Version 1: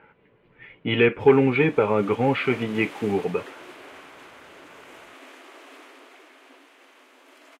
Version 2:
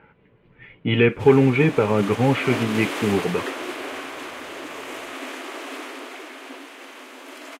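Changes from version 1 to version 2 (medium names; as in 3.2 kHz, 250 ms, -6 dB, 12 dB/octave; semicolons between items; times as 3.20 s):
background +12.0 dB; master: add tone controls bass +7 dB, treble +2 dB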